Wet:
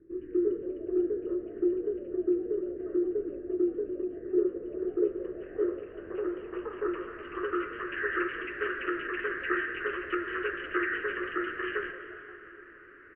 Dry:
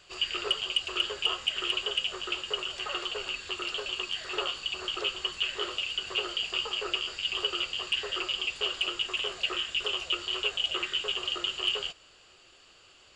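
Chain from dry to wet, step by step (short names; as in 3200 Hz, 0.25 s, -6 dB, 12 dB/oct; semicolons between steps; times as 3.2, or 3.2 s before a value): median filter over 5 samples; notch 380 Hz, Q 12; plate-style reverb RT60 4.3 s, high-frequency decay 0.65×, DRR 8 dB; low-pass sweep 350 Hz -> 1600 Hz, 4.31–8.19; EQ curve 190 Hz 0 dB, 340 Hz +15 dB, 760 Hz -20 dB, 1800 Hz +12 dB, 3400 Hz -21 dB; on a send: frequency-shifting echo 0.175 s, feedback 42%, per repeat +110 Hz, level -21 dB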